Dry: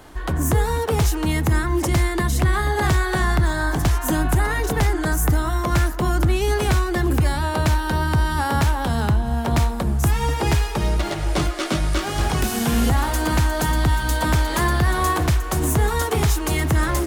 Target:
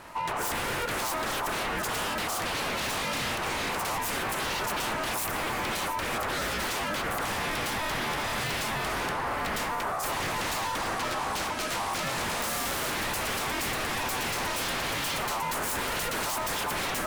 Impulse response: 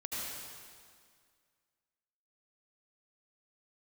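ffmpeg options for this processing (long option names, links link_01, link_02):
-filter_complex "[0:a]aeval=exprs='0.0631*(abs(mod(val(0)/0.0631+3,4)-2)-1)':channel_layout=same,aeval=exprs='val(0)*sin(2*PI*950*n/s)':channel_layout=same,asplit=2[link_01][link_02];[1:a]atrim=start_sample=2205[link_03];[link_02][link_03]afir=irnorm=-1:irlink=0,volume=-14dB[link_04];[link_01][link_04]amix=inputs=2:normalize=0"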